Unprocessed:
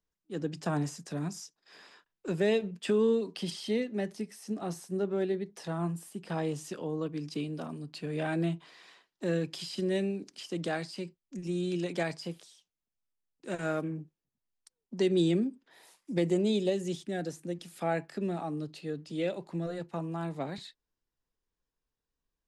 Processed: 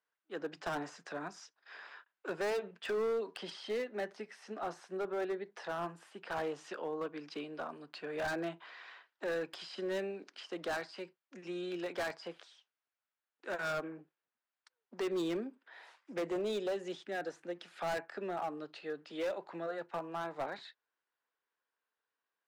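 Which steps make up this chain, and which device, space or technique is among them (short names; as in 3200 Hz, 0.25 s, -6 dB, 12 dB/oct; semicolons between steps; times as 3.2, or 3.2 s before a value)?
megaphone (BPF 650–2800 Hz; bell 1500 Hz +5.5 dB 0.43 oct; hard clip -35.5 dBFS, distortion -8 dB); dynamic EQ 2600 Hz, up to -6 dB, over -55 dBFS, Q 0.72; gain +5 dB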